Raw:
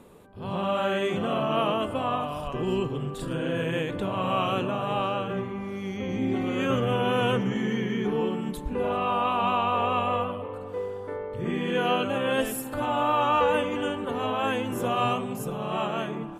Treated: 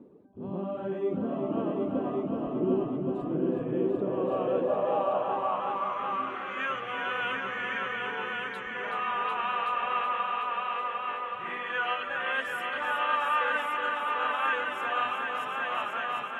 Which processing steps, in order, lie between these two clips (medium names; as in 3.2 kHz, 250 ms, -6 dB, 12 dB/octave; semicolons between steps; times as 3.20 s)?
reverb removal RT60 1.6 s; multi-head delay 374 ms, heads all three, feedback 52%, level -6.5 dB; band-pass sweep 290 Hz -> 1.7 kHz, 3.67–6.68 s; trim +5.5 dB